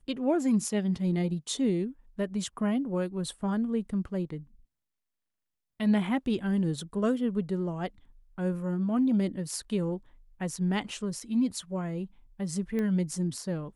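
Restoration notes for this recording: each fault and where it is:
12.79 s: pop -21 dBFS

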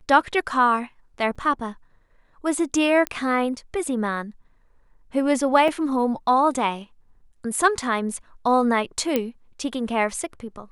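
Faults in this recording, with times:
1.35–1.36 s: dropout 5.8 ms
3.07 s: pop -10 dBFS
5.68 s: dropout 4 ms
9.16 s: pop -8 dBFS

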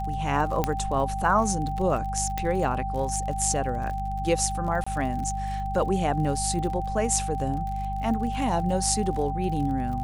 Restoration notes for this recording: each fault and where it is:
crackle 46 per s -34 dBFS
hum 50 Hz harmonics 4 -32 dBFS
whine 780 Hz -30 dBFS
0.64 s: pop -10 dBFS
2.38 s: pop -13 dBFS
4.84–4.87 s: dropout 25 ms

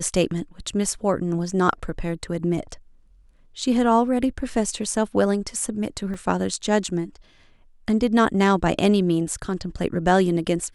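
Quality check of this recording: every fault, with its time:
6.14 s: dropout 3.5 ms

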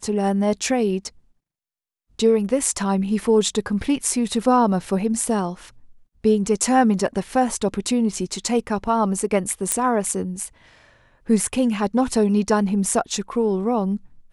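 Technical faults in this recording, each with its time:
9.72 s: pop -4 dBFS

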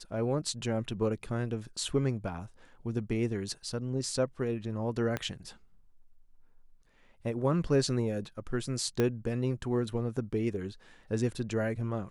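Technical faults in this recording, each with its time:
5.17 s: pop -18 dBFS
9.00 s: pop -15 dBFS

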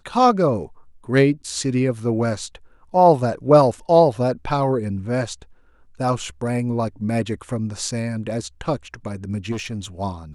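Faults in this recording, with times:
9.51–9.86 s: clipped -23.5 dBFS

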